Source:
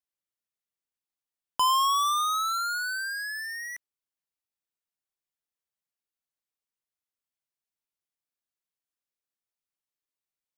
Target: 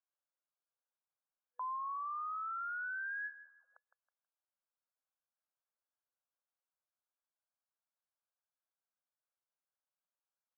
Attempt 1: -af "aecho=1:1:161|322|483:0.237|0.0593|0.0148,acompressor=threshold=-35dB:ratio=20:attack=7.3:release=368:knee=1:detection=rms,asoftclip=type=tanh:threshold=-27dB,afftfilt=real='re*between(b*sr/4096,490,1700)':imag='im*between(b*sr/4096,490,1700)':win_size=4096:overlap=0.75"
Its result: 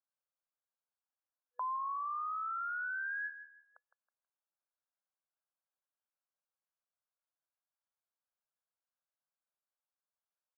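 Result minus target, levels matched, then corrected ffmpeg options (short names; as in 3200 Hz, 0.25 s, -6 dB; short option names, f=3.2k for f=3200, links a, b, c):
soft clip: distortion -12 dB
-af "aecho=1:1:161|322|483:0.237|0.0593|0.0148,acompressor=threshold=-35dB:ratio=20:attack=7.3:release=368:knee=1:detection=rms,asoftclip=type=tanh:threshold=-36.5dB,afftfilt=real='re*between(b*sr/4096,490,1700)':imag='im*between(b*sr/4096,490,1700)':win_size=4096:overlap=0.75"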